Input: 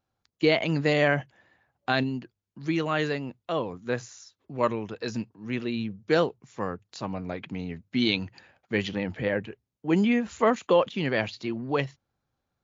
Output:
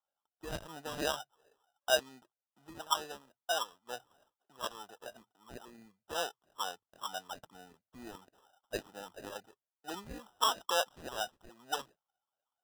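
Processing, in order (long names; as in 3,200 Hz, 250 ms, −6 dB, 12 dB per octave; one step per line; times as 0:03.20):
LFO wah 2.2 Hz 720–1,600 Hz, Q 11
decimation without filtering 20×
dynamic equaliser 4,300 Hz, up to +6 dB, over −55 dBFS, Q 0.71
level +4.5 dB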